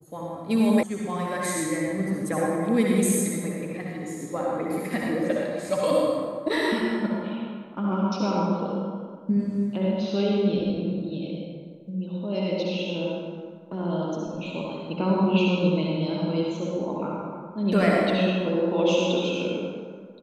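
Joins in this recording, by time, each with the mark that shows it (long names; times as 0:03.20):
0:00.83: cut off before it has died away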